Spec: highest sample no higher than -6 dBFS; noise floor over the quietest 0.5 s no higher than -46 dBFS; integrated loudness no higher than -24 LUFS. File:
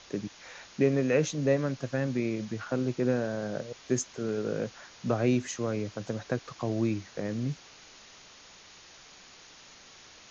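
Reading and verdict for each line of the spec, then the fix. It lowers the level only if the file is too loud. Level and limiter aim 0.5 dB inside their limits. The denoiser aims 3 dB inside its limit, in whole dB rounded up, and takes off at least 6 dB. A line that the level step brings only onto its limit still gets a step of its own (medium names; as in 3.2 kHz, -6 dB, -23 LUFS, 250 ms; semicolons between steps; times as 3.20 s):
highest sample -12.5 dBFS: pass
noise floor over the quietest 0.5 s -53 dBFS: pass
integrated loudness -31.0 LUFS: pass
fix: none needed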